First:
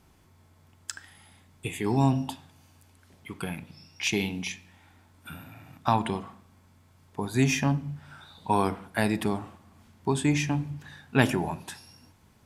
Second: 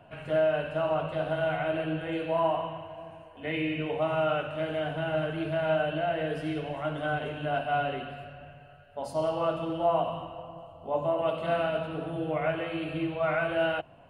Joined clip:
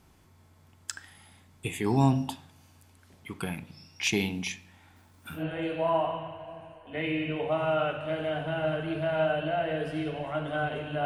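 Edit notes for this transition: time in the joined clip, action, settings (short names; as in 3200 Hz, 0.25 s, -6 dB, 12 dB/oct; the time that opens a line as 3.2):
first
4.96–5.45 companded quantiser 6-bit
5.39 switch to second from 1.89 s, crossfade 0.12 s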